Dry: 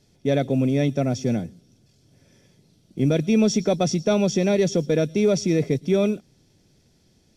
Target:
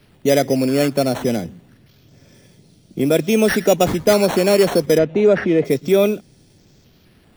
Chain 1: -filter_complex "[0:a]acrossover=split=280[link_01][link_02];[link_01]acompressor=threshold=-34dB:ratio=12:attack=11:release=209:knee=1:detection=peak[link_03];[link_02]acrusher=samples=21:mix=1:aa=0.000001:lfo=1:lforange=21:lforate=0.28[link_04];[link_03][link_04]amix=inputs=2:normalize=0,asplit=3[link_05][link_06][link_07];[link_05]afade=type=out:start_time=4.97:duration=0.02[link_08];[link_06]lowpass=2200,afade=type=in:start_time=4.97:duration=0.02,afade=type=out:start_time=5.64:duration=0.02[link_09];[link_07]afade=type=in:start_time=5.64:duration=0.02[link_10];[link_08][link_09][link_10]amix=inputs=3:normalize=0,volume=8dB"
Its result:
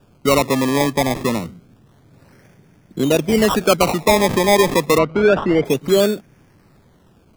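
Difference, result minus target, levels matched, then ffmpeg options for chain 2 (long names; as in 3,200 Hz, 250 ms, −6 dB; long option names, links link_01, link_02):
sample-and-hold swept by an LFO: distortion +11 dB
-filter_complex "[0:a]acrossover=split=280[link_01][link_02];[link_01]acompressor=threshold=-34dB:ratio=12:attack=11:release=209:knee=1:detection=peak[link_03];[link_02]acrusher=samples=6:mix=1:aa=0.000001:lfo=1:lforange=6:lforate=0.28[link_04];[link_03][link_04]amix=inputs=2:normalize=0,asplit=3[link_05][link_06][link_07];[link_05]afade=type=out:start_time=4.97:duration=0.02[link_08];[link_06]lowpass=2200,afade=type=in:start_time=4.97:duration=0.02,afade=type=out:start_time=5.64:duration=0.02[link_09];[link_07]afade=type=in:start_time=5.64:duration=0.02[link_10];[link_08][link_09][link_10]amix=inputs=3:normalize=0,volume=8dB"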